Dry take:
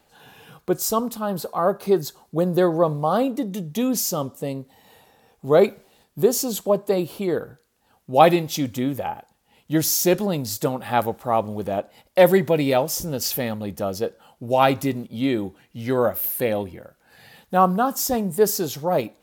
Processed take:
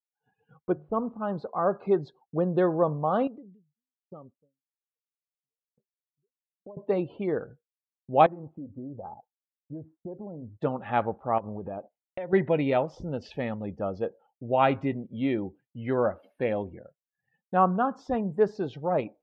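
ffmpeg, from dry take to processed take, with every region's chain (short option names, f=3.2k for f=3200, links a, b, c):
-filter_complex "[0:a]asettb=1/sr,asplit=3[a][b][c];[a]atrim=end=0.724[d];[b]atrim=start=0.72:end=1.2,asetpts=PTS-STARTPTS,afade=t=in:d=0.004:c=qsin,afade=t=out:st=0.476:d=0.004:c=qsin,lowpass=f=2.8k:w=0.5412,lowpass=f=2.8k:w=1.3066,highshelf=f=2.2k:g=-10.5,bandreject=f=50:t=h:w=6,bandreject=f=100:t=h:w=6,bandreject=f=150:t=h:w=6[e];[c]atrim=start=1.196[f];[d][e]acrossfade=d=0.004:c1=hsin:c2=qsin[g];[g][f]acrossfade=d=0.004:c1=qsin:c2=hsin,asettb=1/sr,asplit=3[h][i][j];[h]atrim=end=3.274[k];[i]atrim=start=3.27:end=6.77,asetpts=PTS-STARTPTS,afade=t=in:d=0.004:c=qsin,afade=t=out:st=3.496:d=0.004:c=qsin,acompressor=threshold=-32dB:ratio=10:attack=3.2:release=140:knee=1:detection=peak,aeval=exprs='val(0)*pow(10,-35*if(lt(mod(1.2*n/s,1),2*abs(1.2)/1000),1-mod(1.2*n/s,1)/(2*abs(1.2)/1000),(mod(1.2*n/s,1)-2*abs(1.2)/1000)/(1-2*abs(1.2)/1000))/20)':c=same[l];[j]atrim=start=6.766[m];[k][l]acrossfade=d=0.004:c1=hsin:c2=qsin[n];[n][m]acrossfade=d=0.004:c1=qsin:c2=hsin,asettb=1/sr,asplit=3[o][p][q];[o]atrim=end=8.264[r];[p]atrim=start=8.26:end=10.61,asetpts=PTS-STARTPTS,afade=t=in:d=0.004:c=qsin,afade=t=out:st=2.346:d=0.004:c=qsin,lowpass=f=1.3k:w=0.5412,lowpass=f=1.3k:w=1.3066,acompressor=threshold=-25dB:ratio=12:attack=3.2:release=140:knee=1:detection=peak,flanger=delay=0.6:depth=3.6:regen=-74:speed=1.2:shape=triangular[s];[q]atrim=start=10.606[t];[r][s]acrossfade=d=0.004:c1=hsin:c2=qsin[u];[u][t]acrossfade=d=0.004:c1=qsin:c2=hsin,asettb=1/sr,asplit=3[v][w][x];[v]atrim=end=11.384[y];[w]atrim=start=11.38:end=12.33,asetpts=PTS-STARTPTS,afade=t=in:d=0.004:c=qsin,afade=t=out:st=0.946:d=0.004:c=qsin,agate=range=-12dB:threshold=-45dB:ratio=16:release=100:detection=peak,acompressor=threshold=-26dB:ratio=16:attack=3.2:release=140:knee=1:detection=peak[z];[x]atrim=start=12.326[aa];[y][z]acrossfade=d=0.004:c1=hsin:c2=qsin[ab];[ab][aa]acrossfade=d=0.004:c1=qsin:c2=hsin,afftdn=nr=24:nf=-42,agate=range=-33dB:threshold=-43dB:ratio=3:detection=peak,lowpass=f=2.9k:w=0.5412,lowpass=f=2.9k:w=1.3066,volume=-5dB"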